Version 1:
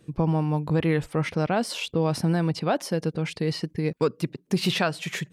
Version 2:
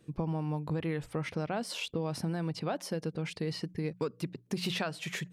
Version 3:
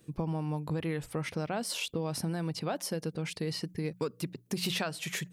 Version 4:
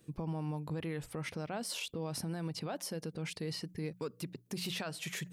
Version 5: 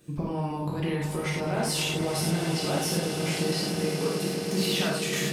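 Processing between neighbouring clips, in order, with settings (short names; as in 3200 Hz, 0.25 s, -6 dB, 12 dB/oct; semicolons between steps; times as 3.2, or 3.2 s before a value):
notches 60/120/180 Hz; compressor 4:1, threshold -24 dBFS, peak gain reduction 6 dB; gain -5.5 dB
high shelf 7000 Hz +11.5 dB
limiter -26 dBFS, peak gain reduction 5.5 dB; reverse; upward compressor, threshold -44 dBFS; reverse; gain -3 dB
on a send: swelling echo 0.107 s, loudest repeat 8, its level -14 dB; on the sum: non-linear reverb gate 0.13 s flat, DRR -4 dB; gain +5 dB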